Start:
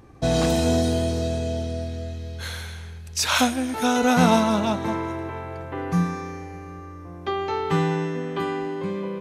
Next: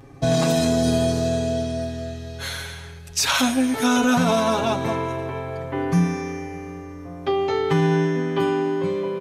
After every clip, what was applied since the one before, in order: comb 7.3 ms, depth 99%; limiter -12 dBFS, peak gain reduction 9 dB; gain +1.5 dB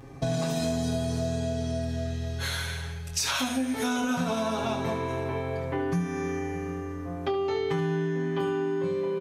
on a send: early reflections 23 ms -6 dB, 72 ms -7 dB; on the sum: compressor 4:1, threshold -25 dBFS, peak gain reduction 11.5 dB; gain -1.5 dB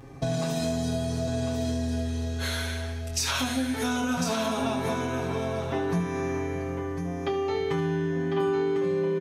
echo 1.05 s -7 dB

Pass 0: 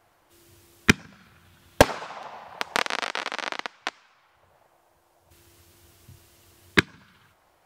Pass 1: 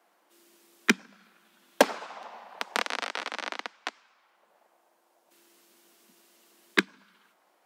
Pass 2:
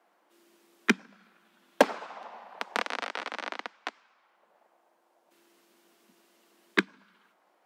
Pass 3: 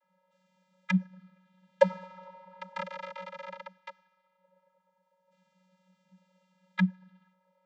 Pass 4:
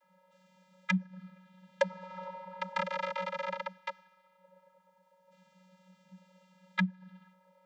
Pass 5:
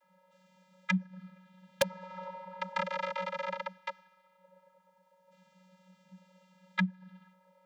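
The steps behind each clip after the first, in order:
steep high-pass 190 Hz 72 dB/oct; gain -4 dB
high shelf 3800 Hz -8.5 dB
vocoder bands 32, square 185 Hz
compressor 4:1, threshold -35 dBFS, peak gain reduction 17.5 dB; gain +6.5 dB
wrapped overs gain 16 dB

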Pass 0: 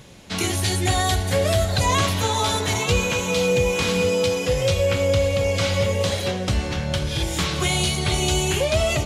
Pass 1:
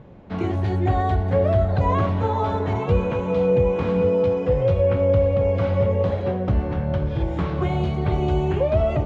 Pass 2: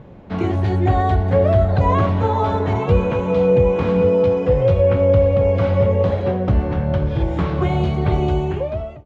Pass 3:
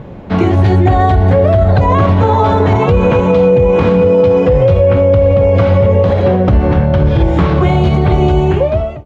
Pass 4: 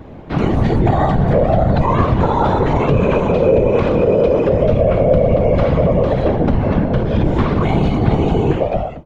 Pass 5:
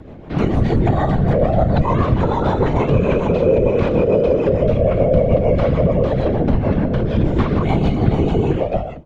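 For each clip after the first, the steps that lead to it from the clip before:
LPF 1000 Hz 12 dB/oct; gain +2 dB
ending faded out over 0.89 s; gain +4 dB
maximiser +12 dB; gain -1 dB
whisperiser; gain -4.5 dB
rotary speaker horn 6.7 Hz

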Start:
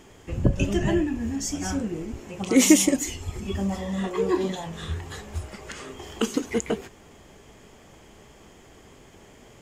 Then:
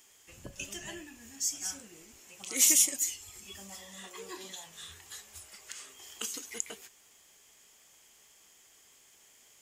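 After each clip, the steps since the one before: pre-emphasis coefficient 0.97; gain +1 dB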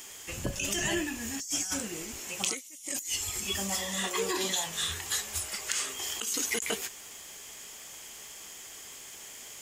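negative-ratio compressor -43 dBFS, ratio -1; gain +8.5 dB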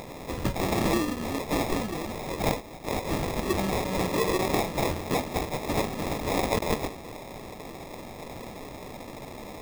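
sample-rate reducer 1500 Hz, jitter 0%; gain +5.5 dB

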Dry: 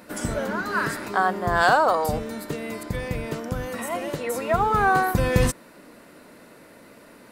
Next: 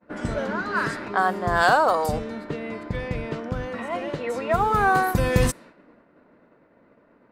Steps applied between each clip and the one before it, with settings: low-pass opened by the level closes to 1400 Hz, open at -17.5 dBFS; expander -42 dBFS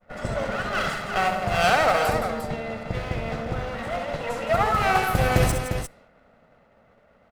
minimum comb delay 1.5 ms; tapped delay 66/168/351 ms -7.5/-9/-7.5 dB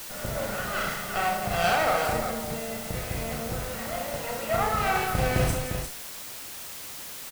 doubler 35 ms -4 dB; added noise white -34 dBFS; gain -5.5 dB

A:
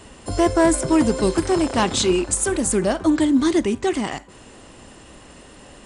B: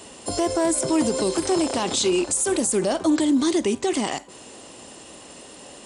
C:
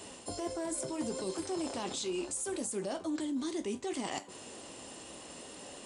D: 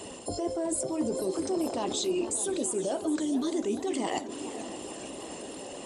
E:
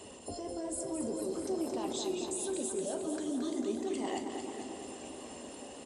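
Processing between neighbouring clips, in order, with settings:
HPF 550 Hz 6 dB/oct; bell 1600 Hz -9 dB 1.6 oct; limiter -20 dBFS, peak gain reduction 11 dB; gain +7 dB
reverse; compressor 6:1, threshold -29 dBFS, peak gain reduction 12.5 dB; reverse; flange 0.71 Hz, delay 9.8 ms, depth 6.7 ms, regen -54%; gain -1 dB
formant sharpening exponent 1.5; tape echo 0.589 s, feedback 72%, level -14.5 dB, low-pass 4700 Hz; warbling echo 0.439 s, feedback 65%, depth 208 cents, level -13.5 dB; gain +6 dB
feedback echo 0.223 s, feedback 57%, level -6.5 dB; reverb RT60 0.90 s, pre-delay 6 ms, DRR 7.5 dB; gain -8 dB

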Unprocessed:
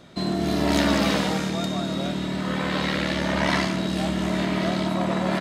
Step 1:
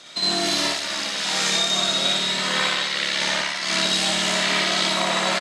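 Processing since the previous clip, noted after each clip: weighting filter ITU-R 468; negative-ratio compressor -26 dBFS, ratio -1; on a send: loudspeakers at several distances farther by 20 m 0 dB, 48 m -10 dB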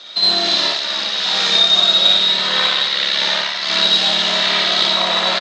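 tracing distortion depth 0.044 ms; speaker cabinet 210–5500 Hz, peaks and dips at 290 Hz -8 dB, 2200 Hz -3 dB, 3800 Hz +8 dB; gain +3.5 dB

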